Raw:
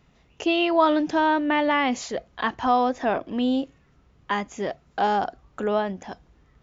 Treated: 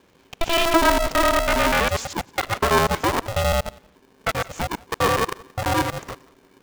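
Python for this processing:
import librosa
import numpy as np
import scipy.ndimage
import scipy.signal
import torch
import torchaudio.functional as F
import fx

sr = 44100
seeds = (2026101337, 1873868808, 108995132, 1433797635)

y = fx.local_reverse(x, sr, ms=82.0)
y = fx.echo_thinned(y, sr, ms=177, feedback_pct=24, hz=330.0, wet_db=-21.5)
y = y * np.sign(np.sin(2.0 * np.pi * 330.0 * np.arange(len(y)) / sr))
y = y * librosa.db_to_amplitude(2.5)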